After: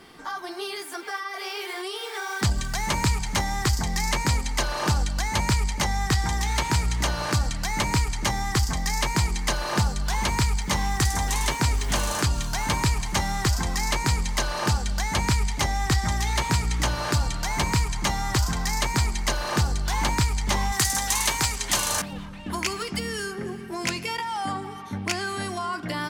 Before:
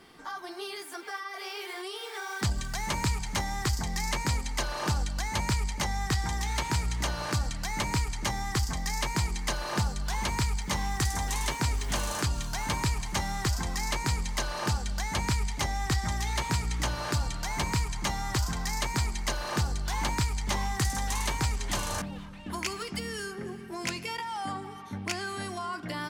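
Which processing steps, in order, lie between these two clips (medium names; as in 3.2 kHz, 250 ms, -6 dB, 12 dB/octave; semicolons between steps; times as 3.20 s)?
20.72–22.13 s: tilt EQ +2 dB/octave; trim +5.5 dB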